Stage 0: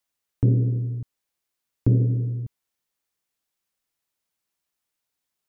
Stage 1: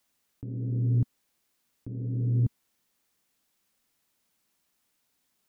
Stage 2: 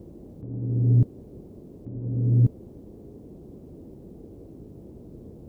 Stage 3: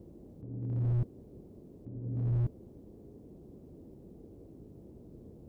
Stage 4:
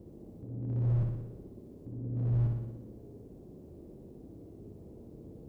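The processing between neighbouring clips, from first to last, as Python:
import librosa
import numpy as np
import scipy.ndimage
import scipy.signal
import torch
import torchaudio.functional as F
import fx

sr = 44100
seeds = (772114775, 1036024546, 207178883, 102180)

y1 = fx.peak_eq(x, sr, hz=230.0, db=6.5, octaves=0.81)
y1 = fx.over_compress(y1, sr, threshold_db=-29.0, ratio=-1.0)
y2 = fx.dmg_noise_band(y1, sr, seeds[0], low_hz=31.0, high_hz=410.0, level_db=-44.0)
y2 = fx.upward_expand(y2, sr, threshold_db=-36.0, expansion=1.5)
y2 = y2 * 10.0 ** (7.0 / 20.0)
y3 = fx.slew_limit(y2, sr, full_power_hz=13.0)
y3 = y3 * 10.0 ** (-7.5 / 20.0)
y4 = fx.room_flutter(y3, sr, wall_m=10.3, rt60_s=0.98)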